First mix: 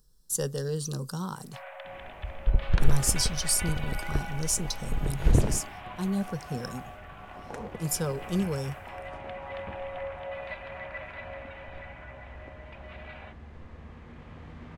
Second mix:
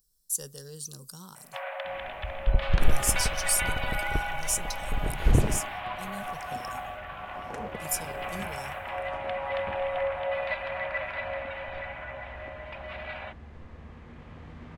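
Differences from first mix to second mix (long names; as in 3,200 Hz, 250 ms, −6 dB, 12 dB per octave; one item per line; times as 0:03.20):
speech: add first-order pre-emphasis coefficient 0.8
first sound +7.5 dB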